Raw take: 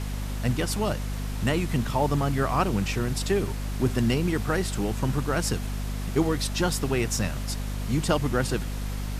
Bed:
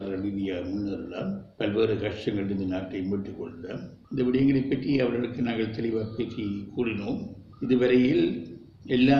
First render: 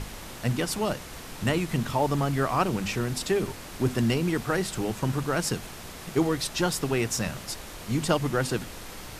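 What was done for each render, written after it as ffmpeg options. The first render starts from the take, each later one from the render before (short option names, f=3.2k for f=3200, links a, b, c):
-af "bandreject=f=50:t=h:w=6,bandreject=f=100:t=h:w=6,bandreject=f=150:t=h:w=6,bandreject=f=200:t=h:w=6,bandreject=f=250:t=h:w=6"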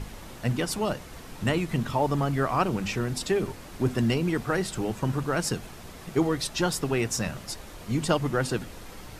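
-af "afftdn=nr=6:nf=-42"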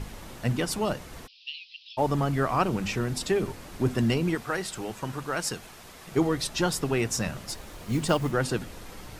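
-filter_complex "[0:a]asplit=3[a][b][c];[a]afade=t=out:st=1.26:d=0.02[d];[b]asuperpass=centerf=3700:order=12:qfactor=1.4,afade=t=in:st=1.26:d=0.02,afade=t=out:st=1.97:d=0.02[e];[c]afade=t=in:st=1.97:d=0.02[f];[d][e][f]amix=inputs=3:normalize=0,asettb=1/sr,asplit=3[g][h][i];[g]atrim=end=4.354[j];[h]atrim=start=4.35:end=6.12,asetpts=PTS-STARTPTS,afade=t=in:d=0.004:c=qsin,afade=t=out:st=1.766:d=0.004:c=qsin,lowshelf=f=430:g=-9.5[k];[i]atrim=start=6.116[l];[j][k]acrossfade=d=0.004:c1=hsin:c2=qsin[m];[m][l]acrossfade=d=0.004:c1=qsin:c2=hsin,asettb=1/sr,asplit=3[n][o][p];[n]atrim=end=7.474[q];[o]atrim=start=7.47:end=8.32,asetpts=PTS-STARTPTS,afade=t=in:d=0.004:c=qsin,afade=t=out:st=0.846:d=0.004:c=qsin,acrusher=bits=6:mode=log:mix=0:aa=0.000001[r];[p]atrim=start=8.316[s];[q][r]acrossfade=d=0.004:c1=hsin:c2=qsin[t];[t][s]acrossfade=d=0.004:c1=qsin:c2=hsin"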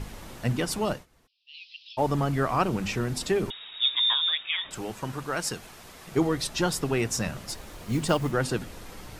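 -filter_complex "[0:a]asettb=1/sr,asplit=3[a][b][c];[a]atrim=end=3.504[d];[b]atrim=start=3.5:end=4.71,asetpts=PTS-STARTPTS,afade=t=in:d=0.004:c=qsin,afade=t=out:st=1.206:d=0.004:c=qsin,lowpass=f=3.2k:t=q:w=0.5098,lowpass=f=3.2k:t=q:w=0.6013,lowpass=f=3.2k:t=q:w=0.9,lowpass=f=3.2k:t=q:w=2.563,afreqshift=-3800[e];[c]atrim=start=4.706[f];[d][e]acrossfade=d=0.004:c1=hsin:c2=qsin[g];[g][f]acrossfade=d=0.004:c1=qsin:c2=hsin,asplit=3[h][i][j];[h]atrim=end=1.06,asetpts=PTS-STARTPTS,afade=t=out:st=0.92:d=0.14:silence=0.0944061[k];[i]atrim=start=1.06:end=1.48,asetpts=PTS-STARTPTS,volume=-20.5dB[l];[j]atrim=start=1.48,asetpts=PTS-STARTPTS,afade=t=in:d=0.14:silence=0.0944061[m];[k][l][m]concat=n=3:v=0:a=1"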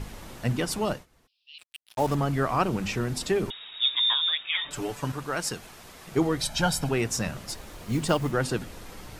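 -filter_complex "[0:a]asettb=1/sr,asplit=3[a][b][c];[a]atrim=end=1.584[d];[b]atrim=start=1.58:end=2.15,asetpts=PTS-STARTPTS,afade=t=in:d=0.004:c=qsin,afade=t=out:st=0.566:d=0.004:c=qsin,acrusher=bits=5:mix=0:aa=0.5[e];[c]atrim=start=2.146[f];[d][e]acrossfade=d=0.004:c1=hsin:c2=qsin[g];[g][f]acrossfade=d=0.004:c1=qsin:c2=hsin,asettb=1/sr,asplit=3[h][i][j];[h]atrim=end=4.544[k];[i]atrim=start=4.54:end=5.12,asetpts=PTS-STARTPTS,afade=t=in:d=0.004:c=qsin,afade=t=out:st=0.576:d=0.004:c=qsin,aecho=1:1:6.9:0.84,atrim=end_sample=25578[l];[j]atrim=start=5.116[m];[k][l]acrossfade=d=0.004:c1=hsin:c2=qsin[n];[n][m]acrossfade=d=0.004:c1=qsin:c2=hsin,asettb=1/sr,asplit=3[o][p][q];[o]atrim=end=6.414[r];[p]atrim=start=6.41:end=6.89,asetpts=PTS-STARTPTS,afade=t=in:d=0.004:c=qsin,afade=t=out:st=0.476:d=0.004:c=qsin,aecho=1:1:1.3:0.79,atrim=end_sample=21168[s];[q]atrim=start=6.886[t];[r][s]acrossfade=d=0.004:c1=hsin:c2=qsin[u];[u][t]acrossfade=d=0.004:c1=qsin:c2=hsin"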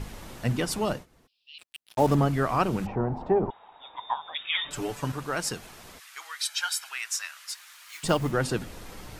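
-filter_complex "[0:a]asettb=1/sr,asplit=3[a][b][c];[a]atrim=end=0.944[d];[b]atrim=start=0.94:end=2.28,asetpts=PTS-STARTPTS,afade=t=in:d=0.004:c=qsin,afade=t=out:st=1.336:d=0.004:c=qsin,equalizer=f=260:w=0.4:g=5[e];[c]atrim=start=2.276[f];[d][e]acrossfade=d=0.004:c1=hsin:c2=qsin[g];[g][f]acrossfade=d=0.004:c1=qsin:c2=hsin,asplit=3[h][i][j];[h]afade=t=out:st=2.85:d=0.02[k];[i]lowpass=f=840:t=q:w=4.9,afade=t=in:st=2.85:d=0.02,afade=t=out:st=4.34:d=0.02[l];[j]afade=t=in:st=4.34:d=0.02[m];[k][l][m]amix=inputs=3:normalize=0,asplit=3[n][o][p];[n]afade=t=out:st=5.98:d=0.02[q];[o]highpass=f=1.3k:w=0.5412,highpass=f=1.3k:w=1.3066,afade=t=in:st=5.98:d=0.02,afade=t=out:st=8.03:d=0.02[r];[p]afade=t=in:st=8.03:d=0.02[s];[q][r][s]amix=inputs=3:normalize=0"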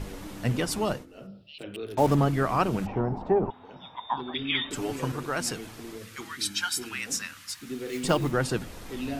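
-filter_complex "[1:a]volume=-13.5dB[a];[0:a][a]amix=inputs=2:normalize=0"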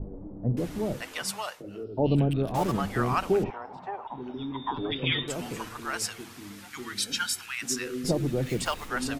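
-filter_complex "[0:a]acrossover=split=700[a][b];[b]adelay=570[c];[a][c]amix=inputs=2:normalize=0"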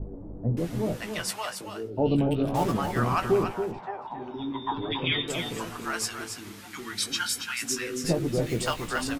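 -filter_complex "[0:a]asplit=2[a][b];[b]adelay=18,volume=-8dB[c];[a][c]amix=inputs=2:normalize=0,asplit=2[d][e];[e]aecho=0:1:278:0.422[f];[d][f]amix=inputs=2:normalize=0"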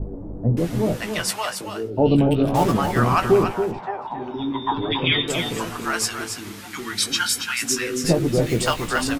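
-af "volume=7dB"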